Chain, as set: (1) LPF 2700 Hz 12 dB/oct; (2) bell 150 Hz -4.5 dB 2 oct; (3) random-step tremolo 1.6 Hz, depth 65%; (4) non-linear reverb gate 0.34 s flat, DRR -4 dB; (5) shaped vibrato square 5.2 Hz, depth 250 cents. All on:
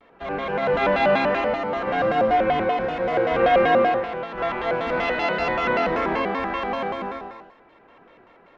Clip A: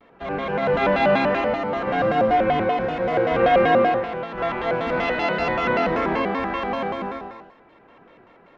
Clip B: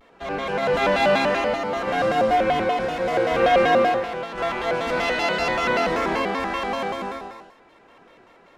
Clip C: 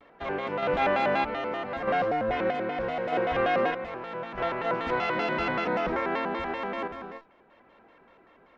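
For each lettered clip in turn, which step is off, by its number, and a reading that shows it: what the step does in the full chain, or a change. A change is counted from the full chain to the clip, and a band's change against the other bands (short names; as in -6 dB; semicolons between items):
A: 2, 125 Hz band +3.5 dB; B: 1, 4 kHz band +4.5 dB; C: 4, loudness change -6.5 LU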